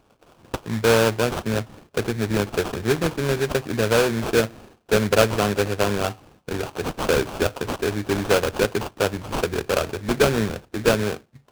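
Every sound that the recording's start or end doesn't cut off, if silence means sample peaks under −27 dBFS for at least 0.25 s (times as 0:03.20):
0:00.54–0:01.62
0:01.97–0:04.47
0:04.92–0:06.11
0:06.49–0:11.14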